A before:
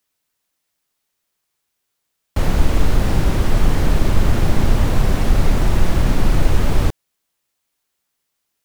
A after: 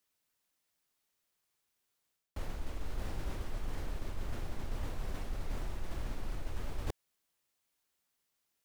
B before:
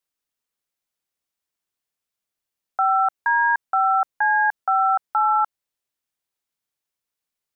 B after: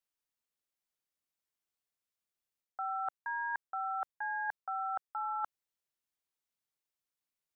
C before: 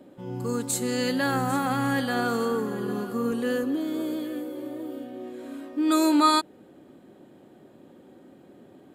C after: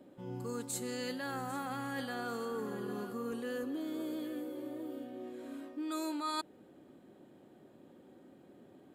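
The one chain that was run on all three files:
dynamic equaliser 160 Hz, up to −6 dB, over −33 dBFS, Q 0.92
reversed playback
downward compressor 5 to 1, threshold −28 dBFS
reversed playback
level −7 dB

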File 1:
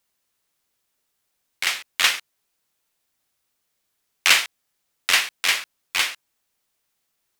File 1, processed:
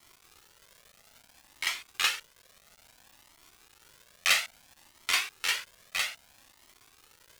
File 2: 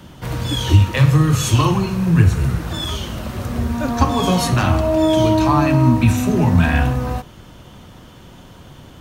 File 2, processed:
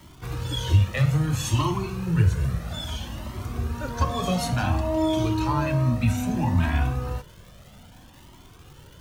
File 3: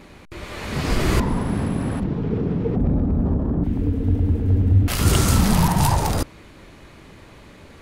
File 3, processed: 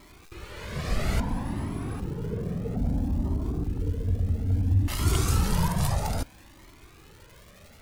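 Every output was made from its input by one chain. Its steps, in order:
surface crackle 460 per second −34 dBFS
flanger whose copies keep moving one way rising 0.6 Hz
level −4 dB

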